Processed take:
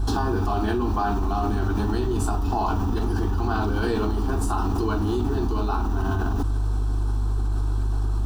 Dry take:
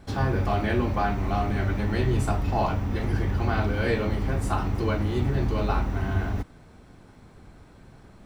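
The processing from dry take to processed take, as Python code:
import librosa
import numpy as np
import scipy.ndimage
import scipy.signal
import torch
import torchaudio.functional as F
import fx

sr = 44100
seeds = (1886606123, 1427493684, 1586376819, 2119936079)

y = fx.dmg_buzz(x, sr, base_hz=50.0, harmonics=3, level_db=-37.0, tilt_db=-4, odd_only=False)
y = fx.fixed_phaser(y, sr, hz=560.0, stages=6)
y = fx.env_flatten(y, sr, amount_pct=100)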